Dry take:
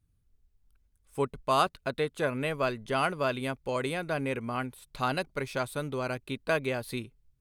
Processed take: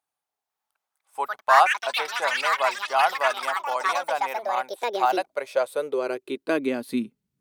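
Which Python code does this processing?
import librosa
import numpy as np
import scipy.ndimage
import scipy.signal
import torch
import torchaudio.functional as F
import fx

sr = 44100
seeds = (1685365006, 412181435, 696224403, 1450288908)

y = fx.filter_sweep_highpass(x, sr, from_hz=800.0, to_hz=200.0, start_s=4.97, end_s=7.25, q=4.9)
y = fx.echo_pitch(y, sr, ms=499, semitones=7, count=3, db_per_echo=-3.0)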